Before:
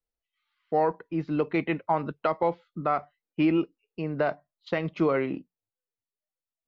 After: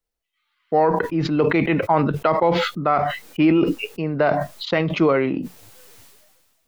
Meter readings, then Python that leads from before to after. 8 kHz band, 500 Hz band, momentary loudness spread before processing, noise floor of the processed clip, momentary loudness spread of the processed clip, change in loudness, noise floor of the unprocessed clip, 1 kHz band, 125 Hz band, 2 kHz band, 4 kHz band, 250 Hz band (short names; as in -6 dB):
n/a, +8.0 dB, 9 LU, -78 dBFS, 7 LU, +8.0 dB, under -85 dBFS, +8.0 dB, +10.0 dB, +9.5 dB, +15.0 dB, +8.0 dB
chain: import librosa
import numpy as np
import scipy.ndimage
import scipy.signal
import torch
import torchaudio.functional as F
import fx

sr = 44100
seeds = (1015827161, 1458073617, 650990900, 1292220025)

y = fx.sustainer(x, sr, db_per_s=34.0)
y = F.gain(torch.from_numpy(y), 6.5).numpy()